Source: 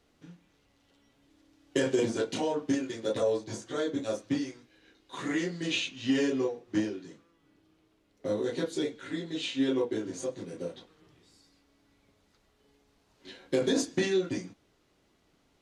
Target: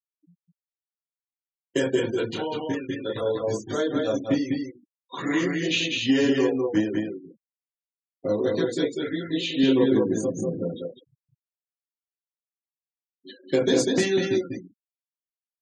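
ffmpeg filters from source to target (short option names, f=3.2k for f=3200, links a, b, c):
-filter_complex "[0:a]asettb=1/sr,asplit=3[a][b][c];[a]atrim=end=9.634[d];[b]atrim=start=9.63:end=10.59,asetpts=PTS-STARTPTS,afade=t=in:d=0.004:c=qsin,afade=t=out:st=0.956:d=0.004:c=qsin,equalizer=f=180:t=o:w=1:g=11[e];[c]atrim=start=10.586[f];[d][e]acrossfade=d=0.004:c1=hsin:c2=qsin[g];[g][f]acrossfade=d=0.004:c1=qsin:c2=hsin,aecho=1:1:189|197:0.141|0.668,dynaudnorm=f=210:g=13:m=13dB,asettb=1/sr,asplit=3[h][i][j];[h]atrim=end=1.954[k];[i]atrim=start=1.95:end=3.44,asetpts=PTS-STARTPTS,afade=t=in:d=0.004:c=qsin,afade=t=out:st=1.486:d=0.004:c=qsin,equalizer=f=250:t=o:w=0.67:g=-7,equalizer=f=630:t=o:w=0.67:g=-8,equalizer=f=6.3k:t=o:w=0.67:g=-7[l];[j]atrim=start=3.436[m];[k][l]acrossfade=d=0.004:c1=hsin:c2=qsin[n];[n][m]acrossfade=d=0.004:c1=qsin:c2=hsin,afftfilt=real='re*gte(hypot(re,im),0.0355)':imag='im*gte(hypot(re,im),0.0355)':win_size=1024:overlap=0.75,volume=-6dB"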